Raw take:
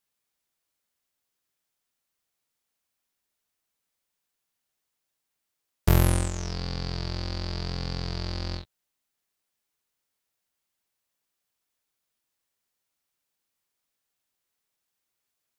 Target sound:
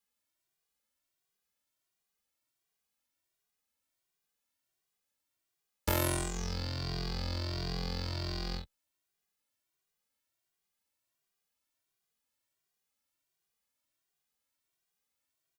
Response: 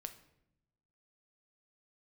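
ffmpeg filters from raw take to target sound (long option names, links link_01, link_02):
-filter_complex "[0:a]acrossover=split=290|710|2000[link_01][link_02][link_03][link_04];[link_01]acompressor=threshold=-30dB:ratio=6[link_05];[link_02]acrusher=samples=11:mix=1:aa=0.000001[link_06];[link_05][link_06][link_03][link_04]amix=inputs=4:normalize=0,asplit=2[link_07][link_08];[link_08]adelay=2,afreqshift=1.4[link_09];[link_07][link_09]amix=inputs=2:normalize=1"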